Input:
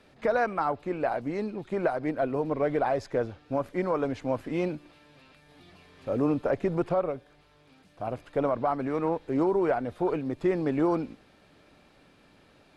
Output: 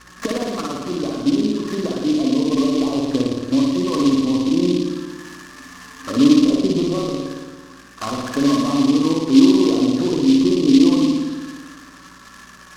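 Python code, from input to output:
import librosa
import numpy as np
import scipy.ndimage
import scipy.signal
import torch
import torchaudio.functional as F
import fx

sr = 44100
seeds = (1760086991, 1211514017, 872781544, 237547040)

y = fx.env_lowpass_down(x, sr, base_hz=430.0, full_db=-26.5)
y = fx.band_shelf(y, sr, hz=1400.0, db=15.5, octaves=1.2)
y = fx.small_body(y, sr, hz=(270.0, 1100.0, 1700.0), ring_ms=65, db=15)
y = fx.env_flanger(y, sr, rest_ms=7.4, full_db=-23.0)
y = fx.add_hum(y, sr, base_hz=60, snr_db=30)
y = fx.rev_spring(y, sr, rt60_s=1.5, pass_ms=(56,), chirp_ms=65, drr_db=-2.0)
y = fx.noise_mod_delay(y, sr, seeds[0], noise_hz=3800.0, depth_ms=0.064)
y = y * 10.0 ** (2.5 / 20.0)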